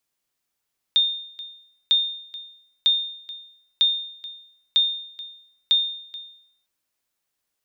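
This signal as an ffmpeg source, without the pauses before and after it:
ffmpeg -f lavfi -i "aevalsrc='0.266*(sin(2*PI*3640*mod(t,0.95))*exp(-6.91*mod(t,0.95)/0.68)+0.119*sin(2*PI*3640*max(mod(t,0.95)-0.43,0))*exp(-6.91*max(mod(t,0.95)-0.43,0)/0.68))':duration=5.7:sample_rate=44100" out.wav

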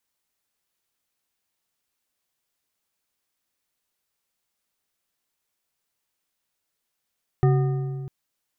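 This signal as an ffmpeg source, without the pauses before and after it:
ffmpeg -f lavfi -i "aevalsrc='0.188*pow(10,-3*t/2.24)*sin(2*PI*137*t)+0.0891*pow(10,-3*t/1.652)*sin(2*PI*377.7*t)+0.0422*pow(10,-3*t/1.35)*sin(2*PI*740.3*t)+0.02*pow(10,-3*t/1.161)*sin(2*PI*1223.8*t)+0.00944*pow(10,-3*t/1.03)*sin(2*PI*1827.6*t)':duration=0.65:sample_rate=44100" out.wav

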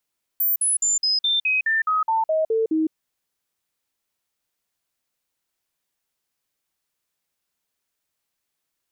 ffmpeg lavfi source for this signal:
ffmpeg -f lavfi -i "aevalsrc='0.133*clip(min(mod(t,0.21),0.16-mod(t,0.21))/0.005,0,1)*sin(2*PI*14300*pow(2,-floor(t/0.21)/2)*mod(t,0.21))':duration=2.52:sample_rate=44100" out.wav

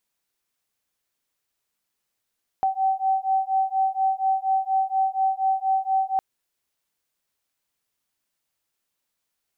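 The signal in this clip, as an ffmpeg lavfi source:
ffmpeg -f lavfi -i "aevalsrc='0.0708*(sin(2*PI*766*t)+sin(2*PI*770.2*t))':duration=3.56:sample_rate=44100" out.wav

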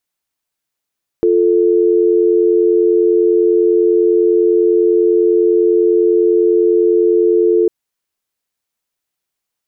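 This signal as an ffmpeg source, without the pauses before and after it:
ffmpeg -f lavfi -i "aevalsrc='0.266*(sin(2*PI*350*t)+sin(2*PI*440*t))':duration=6.45:sample_rate=44100" out.wav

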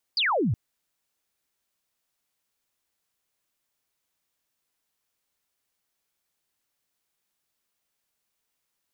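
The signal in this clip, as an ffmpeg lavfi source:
ffmpeg -f lavfi -i "aevalsrc='0.0891*clip(t/0.002,0,1)*clip((0.37-t)/0.002,0,1)*sin(2*PI*5000*0.37/log(91/5000)*(exp(log(91/5000)*t/0.37)-1))':duration=0.37:sample_rate=44100" out.wav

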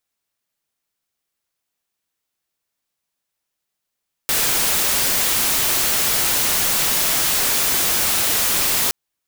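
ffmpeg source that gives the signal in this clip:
ffmpeg -f lavfi -i "anoisesrc=color=white:amplitude=0.206:duration=4.62:sample_rate=44100:seed=1" out.wav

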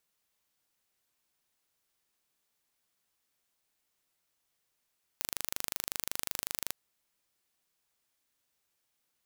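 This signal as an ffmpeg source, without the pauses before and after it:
ffmpeg -f lavfi -i "aevalsrc='0.501*eq(mod(n,1736),0)':duration=1.5:sample_rate=44100" out.wav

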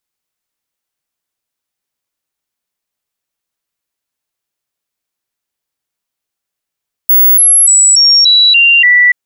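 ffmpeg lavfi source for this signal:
ffmpeg -f lavfi -i "aevalsrc='0.668*clip(min(mod(t,0.29),0.29-mod(t,0.29))/0.005,0,1)*sin(2*PI*15700*pow(2,-floor(t/0.29)/2)*mod(t,0.29))':duration=2.03:sample_rate=44100" out.wav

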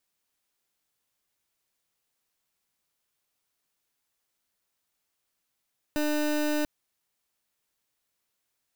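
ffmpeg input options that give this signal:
ffmpeg -f lavfi -i "aevalsrc='0.0473*(2*lt(mod(300*t,1),0.27)-1)':duration=0.69:sample_rate=44100" out.wav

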